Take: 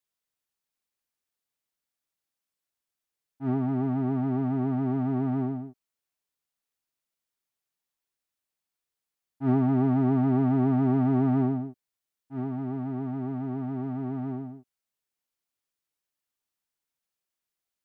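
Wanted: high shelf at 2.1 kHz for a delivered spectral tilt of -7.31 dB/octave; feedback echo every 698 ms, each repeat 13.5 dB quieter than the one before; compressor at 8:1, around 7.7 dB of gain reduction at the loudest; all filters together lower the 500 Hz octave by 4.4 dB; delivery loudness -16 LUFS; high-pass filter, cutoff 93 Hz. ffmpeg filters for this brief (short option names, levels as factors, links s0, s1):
-af "highpass=93,equalizer=f=500:t=o:g=-6,highshelf=f=2100:g=-8.5,acompressor=threshold=0.0355:ratio=8,aecho=1:1:698|1396:0.211|0.0444,volume=8.91"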